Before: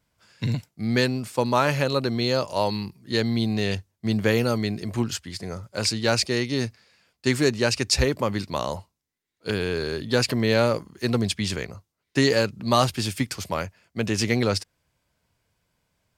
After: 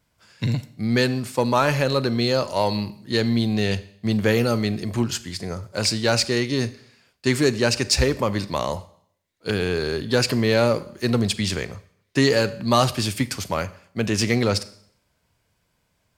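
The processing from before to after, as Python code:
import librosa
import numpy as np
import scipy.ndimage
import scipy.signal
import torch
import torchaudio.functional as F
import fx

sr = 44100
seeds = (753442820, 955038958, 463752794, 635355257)

p1 = 10.0 ** (-21.5 / 20.0) * np.tanh(x / 10.0 ** (-21.5 / 20.0))
p2 = x + F.gain(torch.from_numpy(p1), -6.5).numpy()
y = fx.rev_schroeder(p2, sr, rt60_s=0.63, comb_ms=30, drr_db=15.5)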